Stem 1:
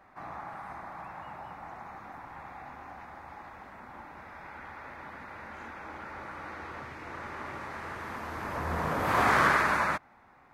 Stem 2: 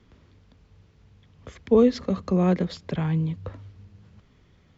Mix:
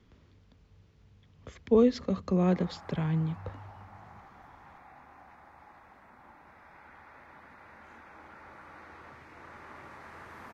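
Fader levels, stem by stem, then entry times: -8.5 dB, -4.5 dB; 2.30 s, 0.00 s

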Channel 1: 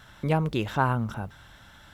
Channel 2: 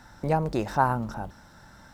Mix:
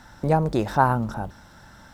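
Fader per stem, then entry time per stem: -9.0 dB, +2.5 dB; 0.00 s, 0.00 s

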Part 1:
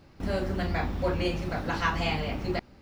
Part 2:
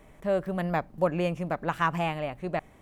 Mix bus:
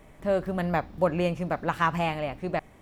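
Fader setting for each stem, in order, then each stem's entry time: -14.5 dB, +1.5 dB; 0.00 s, 0.00 s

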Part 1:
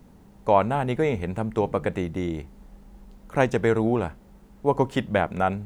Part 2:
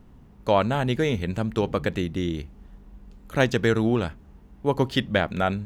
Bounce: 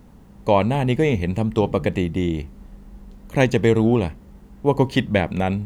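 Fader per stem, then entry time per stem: +1.5 dB, -0.5 dB; 0.00 s, 0.00 s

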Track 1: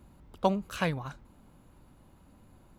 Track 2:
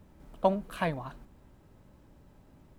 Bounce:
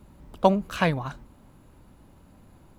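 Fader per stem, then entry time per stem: +3.0 dB, -1.5 dB; 0.00 s, 0.00 s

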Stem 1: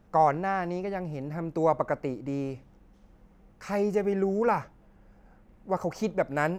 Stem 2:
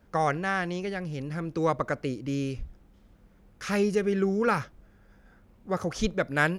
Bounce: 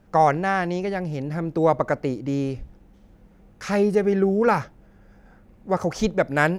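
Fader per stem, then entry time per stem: +1.5 dB, -1.0 dB; 0.00 s, 0.00 s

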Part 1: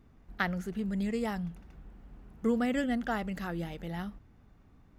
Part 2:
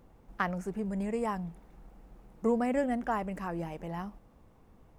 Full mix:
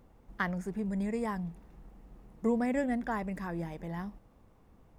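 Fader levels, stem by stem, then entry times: -10.5 dB, -2.0 dB; 0.00 s, 0.00 s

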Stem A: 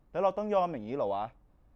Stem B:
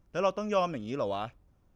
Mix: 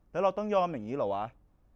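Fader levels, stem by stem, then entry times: -3.0 dB, -8.0 dB; 0.00 s, 0.00 s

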